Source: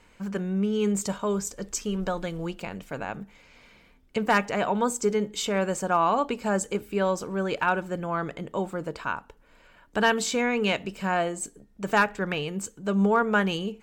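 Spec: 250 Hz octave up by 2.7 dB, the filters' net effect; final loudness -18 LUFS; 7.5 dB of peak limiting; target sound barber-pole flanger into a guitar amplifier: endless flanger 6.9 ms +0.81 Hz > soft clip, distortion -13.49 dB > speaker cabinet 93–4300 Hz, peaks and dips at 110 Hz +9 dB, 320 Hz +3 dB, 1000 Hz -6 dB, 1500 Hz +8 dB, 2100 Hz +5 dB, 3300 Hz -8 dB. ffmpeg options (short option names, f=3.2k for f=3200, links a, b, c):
-filter_complex "[0:a]equalizer=f=250:t=o:g=3,alimiter=limit=-18dB:level=0:latency=1,asplit=2[a][b];[b]adelay=6.9,afreqshift=0.81[c];[a][c]amix=inputs=2:normalize=1,asoftclip=threshold=-27dB,highpass=93,equalizer=f=110:t=q:w=4:g=9,equalizer=f=320:t=q:w=4:g=3,equalizer=f=1k:t=q:w=4:g=-6,equalizer=f=1.5k:t=q:w=4:g=8,equalizer=f=2.1k:t=q:w=4:g=5,equalizer=f=3.3k:t=q:w=4:g=-8,lowpass=f=4.3k:w=0.5412,lowpass=f=4.3k:w=1.3066,volume=16dB"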